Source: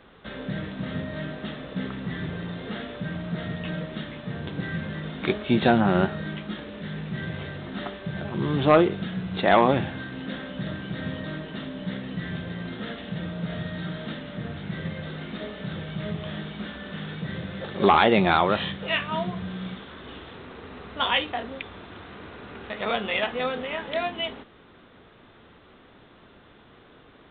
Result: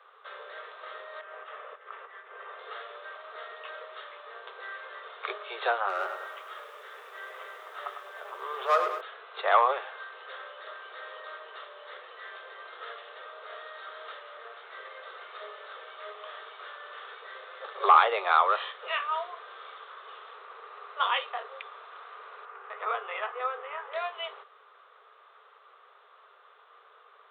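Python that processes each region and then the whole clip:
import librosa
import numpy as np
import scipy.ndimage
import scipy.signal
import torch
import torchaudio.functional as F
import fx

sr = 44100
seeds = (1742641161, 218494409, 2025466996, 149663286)

y = fx.chain(x, sr, fx.lowpass(hz=2900.0, slope=24),
    fx.peak_eq(hz=170.0, db=-10.0, octaves=0.79),
    fx.over_compress(threshold_db=-38.0, ratio=-0.5), at=(1.21, 2.59))
y = fx.chain(y, sr, fx.lowpass(hz=3800.0, slope=12),
    fx.clip_hard(threshold_db=-15.0),
    fx.echo_crushed(ms=103, feedback_pct=55, bits=8, wet_db=-7.5), at=(5.89, 9.01))
y = fx.chain(y, sr, fx.lowpass(hz=2100.0, slope=12),
    fx.peak_eq(hz=590.0, db=-7.0, octaves=0.22), at=(22.45, 23.94))
y = scipy.signal.sosfilt(scipy.signal.butter(16, 410.0, 'highpass', fs=sr, output='sos'), y)
y = fx.peak_eq(y, sr, hz=1200.0, db=14.0, octaves=0.51)
y = F.gain(torch.from_numpy(y), -8.0).numpy()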